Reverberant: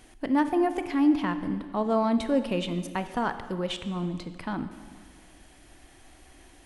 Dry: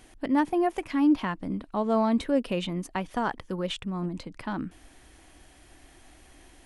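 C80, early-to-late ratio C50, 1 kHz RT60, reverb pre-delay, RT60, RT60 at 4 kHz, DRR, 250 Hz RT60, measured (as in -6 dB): 12.0 dB, 11.0 dB, 1.7 s, 24 ms, 1.7 s, 1.5 s, 10.0 dB, 1.8 s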